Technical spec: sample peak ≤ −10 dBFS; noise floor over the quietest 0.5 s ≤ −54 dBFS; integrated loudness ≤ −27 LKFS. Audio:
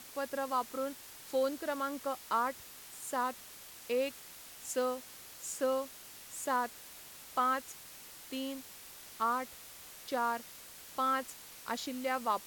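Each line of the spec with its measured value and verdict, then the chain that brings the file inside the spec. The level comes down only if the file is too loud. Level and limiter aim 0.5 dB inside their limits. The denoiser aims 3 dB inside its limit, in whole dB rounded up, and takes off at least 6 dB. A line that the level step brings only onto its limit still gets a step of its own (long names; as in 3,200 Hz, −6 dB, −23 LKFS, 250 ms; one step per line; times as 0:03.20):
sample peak −18.0 dBFS: in spec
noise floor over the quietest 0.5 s −51 dBFS: out of spec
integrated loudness −36.0 LKFS: in spec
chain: broadband denoise 6 dB, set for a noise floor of −51 dBFS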